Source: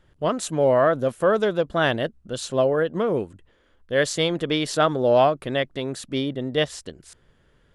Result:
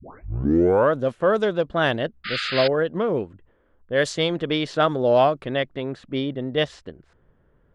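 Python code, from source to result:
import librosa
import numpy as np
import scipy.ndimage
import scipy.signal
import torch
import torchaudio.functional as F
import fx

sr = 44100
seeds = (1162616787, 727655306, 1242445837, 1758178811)

y = fx.tape_start_head(x, sr, length_s=0.95)
y = fx.spec_paint(y, sr, seeds[0], shape='noise', start_s=2.24, length_s=0.44, low_hz=1200.0, high_hz=5100.0, level_db=-26.0)
y = fx.env_lowpass(y, sr, base_hz=1200.0, full_db=-14.0)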